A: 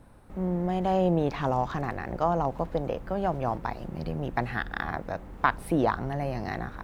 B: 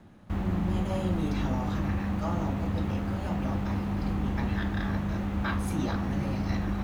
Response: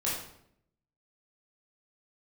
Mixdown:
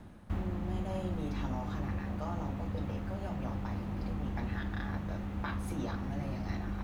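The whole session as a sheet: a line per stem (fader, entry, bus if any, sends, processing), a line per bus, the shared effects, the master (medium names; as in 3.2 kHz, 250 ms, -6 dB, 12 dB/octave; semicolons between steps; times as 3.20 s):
-7.0 dB, 0.00 s, no send, compression, threshold -35 dBFS, peak gain reduction 17 dB
+1.5 dB, 0.00 s, no send, bass shelf 63 Hz +5.5 dB; auto duck -10 dB, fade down 0.50 s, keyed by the first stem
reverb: none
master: none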